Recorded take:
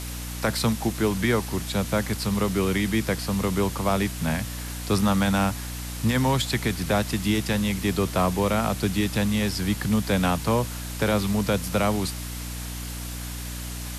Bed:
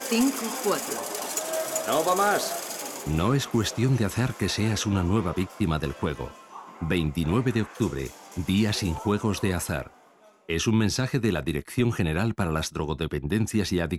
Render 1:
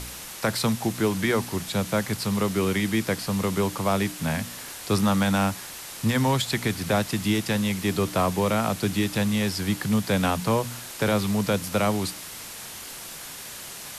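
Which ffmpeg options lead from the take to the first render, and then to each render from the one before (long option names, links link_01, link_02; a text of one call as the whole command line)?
ffmpeg -i in.wav -af "bandreject=frequency=60:width_type=h:width=4,bandreject=frequency=120:width_type=h:width=4,bandreject=frequency=180:width_type=h:width=4,bandreject=frequency=240:width_type=h:width=4,bandreject=frequency=300:width_type=h:width=4" out.wav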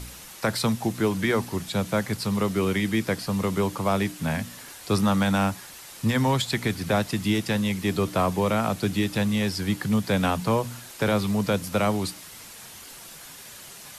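ffmpeg -i in.wav -af "afftdn=noise_reduction=6:noise_floor=-39" out.wav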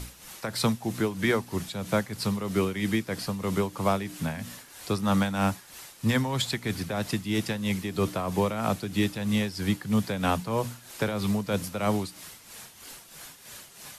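ffmpeg -i in.wav -af "tremolo=f=3.1:d=0.66" out.wav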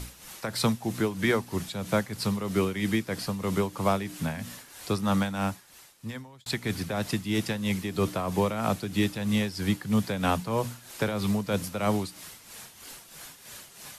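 ffmpeg -i in.wav -filter_complex "[0:a]asplit=2[link_01][link_02];[link_01]atrim=end=6.46,asetpts=PTS-STARTPTS,afade=type=out:start_time=4.94:duration=1.52[link_03];[link_02]atrim=start=6.46,asetpts=PTS-STARTPTS,afade=type=in:duration=0.004:curve=hsin[link_04];[link_03][link_04]concat=n=2:v=0:a=1" out.wav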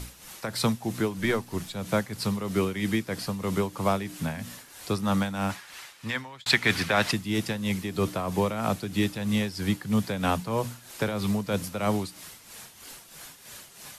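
ffmpeg -i in.wav -filter_complex "[0:a]asettb=1/sr,asplit=3[link_01][link_02][link_03];[link_01]atrim=end=1.194[link_04];[link_02]atrim=start=1.19:end=1.77,asetpts=PTS-STARTPTS,afade=type=in:duration=0.004:curve=qsin,afade=type=out:start_time=0.576:duration=0.004:curve=qsin,aeval=exprs='if(lt(val(0),0),0.708*val(0),val(0))':channel_layout=same[link_05];[link_03]atrim=start=1.766[link_06];[link_04][link_05]acrossfade=duration=0.004:curve1=hsin:curve2=qsin[link_07];[link_07][link_06]acrossfade=duration=0.004:curve1=qsin:curve2=hsin,asplit=3[link_08][link_09][link_10];[link_08]afade=type=out:start_time=5.49:duration=0.02[link_11];[link_09]equalizer=frequency=2000:width=0.36:gain=13.5,afade=type=in:start_time=5.49:duration=0.02,afade=type=out:start_time=7.11:duration=0.02[link_12];[link_10]afade=type=in:start_time=7.11:duration=0.02[link_13];[link_11][link_12][link_13]amix=inputs=3:normalize=0" out.wav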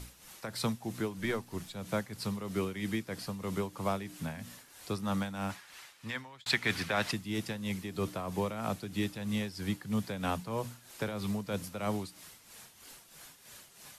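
ffmpeg -i in.wav -af "volume=-7.5dB" out.wav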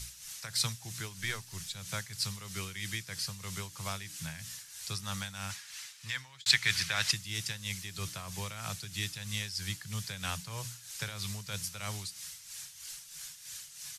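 ffmpeg -i in.wav -af "firequalizer=gain_entry='entry(150,0);entry(220,-17);entry(1600,1);entry(5900,12);entry(12000,5)':delay=0.05:min_phase=1" out.wav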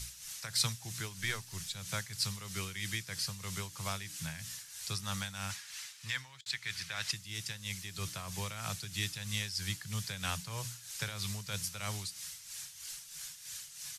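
ffmpeg -i in.wav -filter_complex "[0:a]asplit=2[link_01][link_02];[link_01]atrim=end=6.41,asetpts=PTS-STARTPTS,afade=type=out:start_time=6.406:duration=0.004:curve=hsin:silence=0.177828[link_03];[link_02]atrim=start=6.41,asetpts=PTS-STARTPTS,afade=type=in:duration=1.85:silence=0.177828[link_04];[link_03][link_04]concat=n=2:v=0:a=1" out.wav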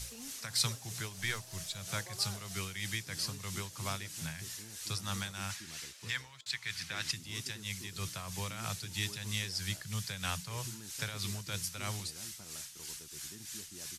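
ffmpeg -i in.wav -i bed.wav -filter_complex "[1:a]volume=-29dB[link_01];[0:a][link_01]amix=inputs=2:normalize=0" out.wav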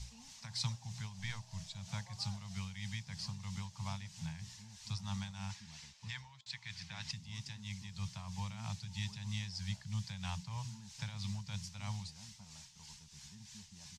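ffmpeg -i in.wav -af "firequalizer=gain_entry='entry(210,0);entry(300,-27);entry(890,1);entry(1300,-14);entry(2000,-9);entry(5200,-7);entry(7400,-12);entry(11000,-27)':delay=0.05:min_phase=1" out.wav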